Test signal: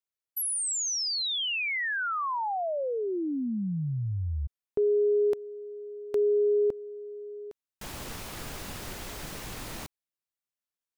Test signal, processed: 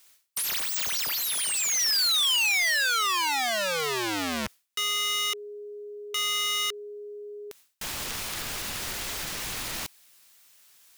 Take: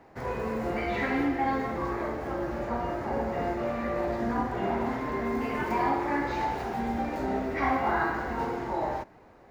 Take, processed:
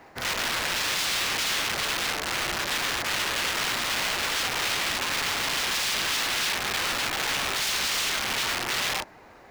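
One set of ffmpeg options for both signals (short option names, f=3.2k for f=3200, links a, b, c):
-filter_complex "[0:a]areverse,acompressor=mode=upward:threshold=-46dB:ratio=2.5:attack=2.9:release=131:knee=2.83:detection=peak,areverse,aeval=exprs='(mod(26.6*val(0)+1,2)-1)/26.6':c=same,tiltshelf=f=1.1k:g=-6,acrossover=split=6300[a][b];[b]acompressor=threshold=-36dB:ratio=4:attack=1:release=60[c];[a][c]amix=inputs=2:normalize=0,volume=4.5dB"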